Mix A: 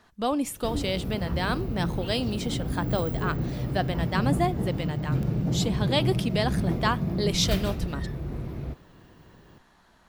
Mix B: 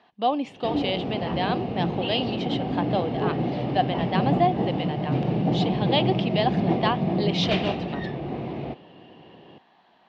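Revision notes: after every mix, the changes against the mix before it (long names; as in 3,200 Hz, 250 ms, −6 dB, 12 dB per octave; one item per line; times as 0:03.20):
background +8.0 dB
master: add loudspeaker in its box 210–4,100 Hz, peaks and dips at 760 Hz +9 dB, 1,400 Hz −8 dB, 2,900 Hz +6 dB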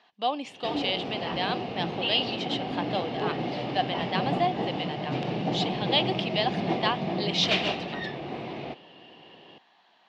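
speech −3.0 dB
master: add spectral tilt +3 dB per octave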